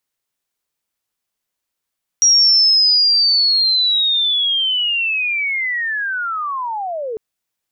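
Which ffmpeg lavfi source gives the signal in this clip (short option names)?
-f lavfi -i "aevalsrc='pow(10,(-8-13.5*t/4.95)/20)*sin(2*PI*(5700*t-5280*t*t/(2*4.95)))':d=4.95:s=44100"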